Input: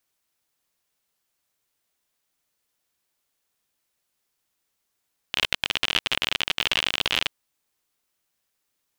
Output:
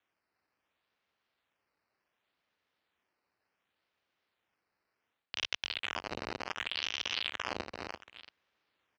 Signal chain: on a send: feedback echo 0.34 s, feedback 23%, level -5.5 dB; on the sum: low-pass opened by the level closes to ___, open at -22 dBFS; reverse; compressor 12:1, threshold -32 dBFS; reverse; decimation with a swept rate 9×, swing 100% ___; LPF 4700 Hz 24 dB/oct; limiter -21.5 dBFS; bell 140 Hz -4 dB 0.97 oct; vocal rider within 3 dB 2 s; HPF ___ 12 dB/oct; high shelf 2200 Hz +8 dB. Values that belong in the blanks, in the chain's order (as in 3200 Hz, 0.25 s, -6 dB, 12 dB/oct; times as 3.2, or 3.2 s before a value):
2400 Hz, 0.68 Hz, 69 Hz